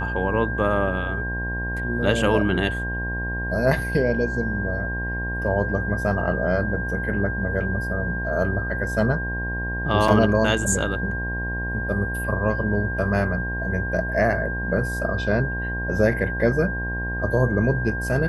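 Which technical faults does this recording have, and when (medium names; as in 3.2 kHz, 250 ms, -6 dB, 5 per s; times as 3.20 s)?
buzz 60 Hz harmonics 18 -29 dBFS
whine 1.6 kHz -28 dBFS
10.08 s: dropout 3.9 ms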